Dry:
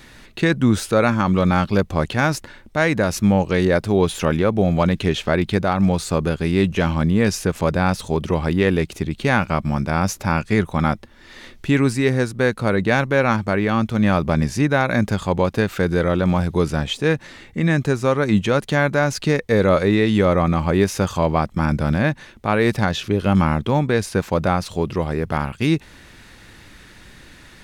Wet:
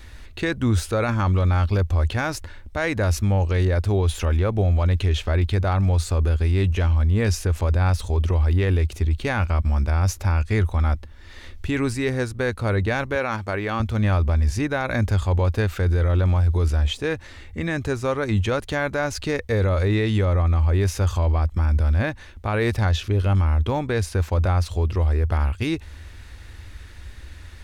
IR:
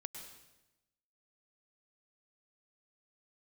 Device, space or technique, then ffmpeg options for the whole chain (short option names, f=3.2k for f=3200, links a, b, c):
car stereo with a boomy subwoofer: -filter_complex "[0:a]asettb=1/sr,asplit=3[a][b][c];[a]atrim=end=13.154[d];[b]atrim=start=13.15:end=13.8,asetpts=PTS-STARTPTS,afade=t=in:d=0.004:c=qsin,afade=t=out:st=0.646:d=0.004:c=qsin,highpass=f=280:p=1[e];[c]atrim=start=13.796[f];[d][e]acrossfade=d=0.004:c1=hsin:c2=qsin[g];[g][f]acrossfade=d=0.004:c1=qsin:c2=hsin,lowshelf=f=110:t=q:w=3:g=10.5,alimiter=limit=-10dB:level=0:latency=1:release=10,volume=-3.5dB"